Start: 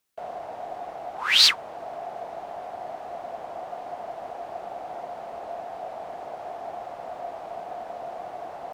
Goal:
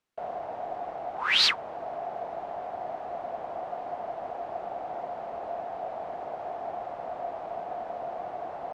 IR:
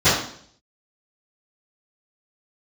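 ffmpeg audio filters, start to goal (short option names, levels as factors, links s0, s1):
-af "aemphasis=mode=reproduction:type=75fm"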